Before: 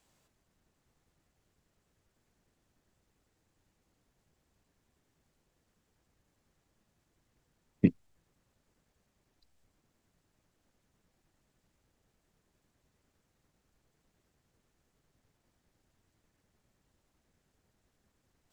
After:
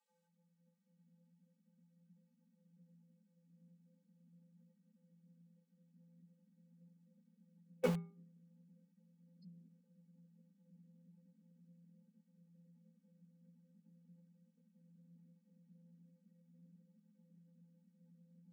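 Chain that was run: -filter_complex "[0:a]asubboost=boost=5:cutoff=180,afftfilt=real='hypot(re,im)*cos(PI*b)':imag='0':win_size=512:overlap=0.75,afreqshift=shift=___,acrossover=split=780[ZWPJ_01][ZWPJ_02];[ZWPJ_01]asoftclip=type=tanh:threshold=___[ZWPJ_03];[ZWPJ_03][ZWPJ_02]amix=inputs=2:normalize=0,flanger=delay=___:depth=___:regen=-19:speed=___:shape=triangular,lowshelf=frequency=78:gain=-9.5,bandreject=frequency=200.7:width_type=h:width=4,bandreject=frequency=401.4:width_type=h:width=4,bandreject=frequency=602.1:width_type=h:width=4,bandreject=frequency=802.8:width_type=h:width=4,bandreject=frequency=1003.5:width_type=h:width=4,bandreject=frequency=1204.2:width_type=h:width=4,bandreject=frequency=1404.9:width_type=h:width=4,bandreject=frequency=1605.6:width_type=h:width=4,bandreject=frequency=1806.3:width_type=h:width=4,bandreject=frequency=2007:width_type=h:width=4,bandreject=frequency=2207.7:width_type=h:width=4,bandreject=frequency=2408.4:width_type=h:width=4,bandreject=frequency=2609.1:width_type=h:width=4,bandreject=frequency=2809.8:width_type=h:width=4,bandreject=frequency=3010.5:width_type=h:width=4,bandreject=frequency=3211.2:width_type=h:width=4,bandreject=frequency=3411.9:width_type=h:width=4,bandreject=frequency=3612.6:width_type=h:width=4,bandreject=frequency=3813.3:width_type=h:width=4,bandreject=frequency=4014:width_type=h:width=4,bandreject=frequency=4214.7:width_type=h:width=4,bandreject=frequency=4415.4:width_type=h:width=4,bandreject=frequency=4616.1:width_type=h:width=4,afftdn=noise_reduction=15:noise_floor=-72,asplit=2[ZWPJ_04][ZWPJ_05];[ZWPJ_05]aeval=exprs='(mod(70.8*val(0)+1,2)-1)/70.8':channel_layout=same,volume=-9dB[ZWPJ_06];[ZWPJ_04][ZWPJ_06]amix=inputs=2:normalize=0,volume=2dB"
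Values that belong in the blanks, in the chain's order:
170, -23.5dB, 8.2, 9.6, 0.41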